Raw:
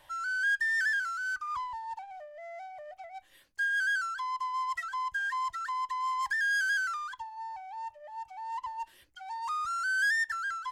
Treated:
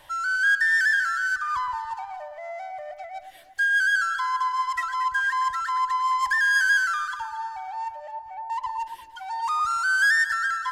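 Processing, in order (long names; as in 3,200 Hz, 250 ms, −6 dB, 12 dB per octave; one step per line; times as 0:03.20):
0:07.92–0:08.50: treble cut that deepens with the level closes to 590 Hz, closed at −36.5 dBFS
delay that swaps between a low-pass and a high-pass 115 ms, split 1,500 Hz, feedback 63%, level −8 dB
level +7.5 dB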